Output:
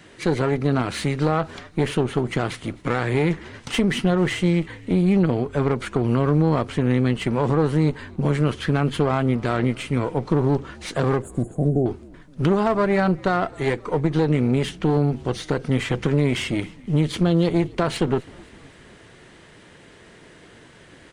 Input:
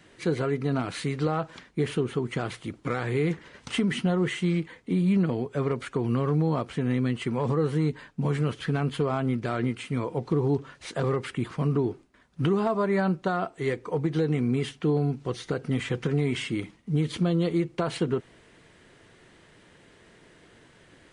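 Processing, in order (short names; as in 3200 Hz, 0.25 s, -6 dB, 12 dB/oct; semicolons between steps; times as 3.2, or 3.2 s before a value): one diode to ground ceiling -30.5 dBFS; 11.22–11.86 brick-wall FIR band-stop 790–6500 Hz; frequency-shifting echo 0.259 s, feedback 57%, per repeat -64 Hz, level -24 dB; gain +7.5 dB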